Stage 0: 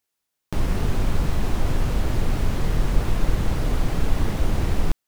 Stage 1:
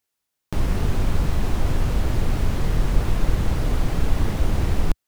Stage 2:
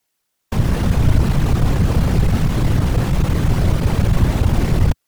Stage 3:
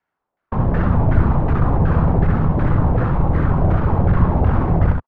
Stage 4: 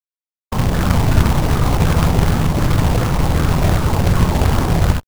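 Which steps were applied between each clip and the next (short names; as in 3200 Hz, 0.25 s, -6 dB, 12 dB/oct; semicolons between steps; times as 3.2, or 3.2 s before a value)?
bell 69 Hz +2.5 dB 1.4 oct
in parallel at -11.5 dB: sine folder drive 10 dB, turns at -5 dBFS; on the sum: whisperiser
LFO low-pass saw down 2.7 Hz 710–1600 Hz; on a send: early reflections 65 ms -5 dB, 77 ms -8 dB; on the sum: gain -2 dB
in parallel at -9.5 dB: one-sided clip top -22.5 dBFS; on the sum: companded quantiser 4-bit; gain -1 dB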